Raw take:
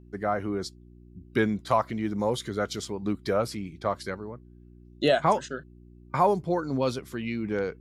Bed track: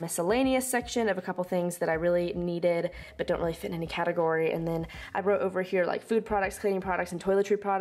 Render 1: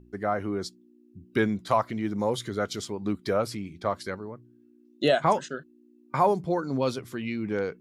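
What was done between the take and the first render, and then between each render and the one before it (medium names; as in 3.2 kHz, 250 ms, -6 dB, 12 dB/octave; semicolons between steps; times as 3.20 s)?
de-hum 60 Hz, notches 3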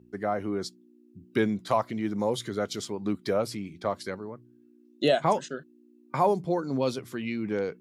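high-pass 110 Hz; dynamic bell 1.4 kHz, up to -5 dB, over -39 dBFS, Q 1.4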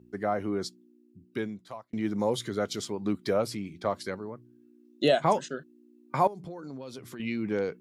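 0.65–1.93 s: fade out; 6.27–7.20 s: compression 8:1, threshold -37 dBFS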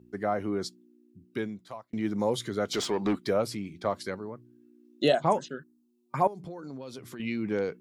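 2.73–3.19 s: overdrive pedal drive 21 dB, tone 2.9 kHz, clips at -18 dBFS; 5.12–6.28 s: touch-sensitive phaser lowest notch 270 Hz, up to 4.5 kHz, full sweep at -20 dBFS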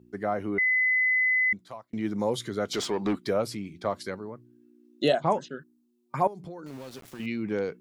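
0.58–1.53 s: bleep 2.02 kHz -20.5 dBFS; 5.13–5.53 s: distance through air 54 m; 6.66–7.26 s: small samples zeroed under -44 dBFS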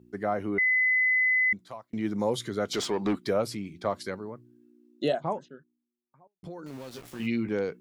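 4.28–6.43 s: studio fade out; 6.93–7.49 s: doubling 17 ms -4.5 dB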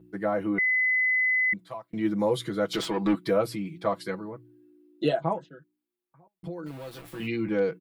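peaking EQ 6.2 kHz -9 dB 0.79 oct; comb 6.1 ms, depth 91%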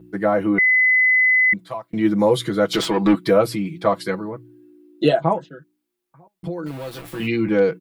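trim +8.5 dB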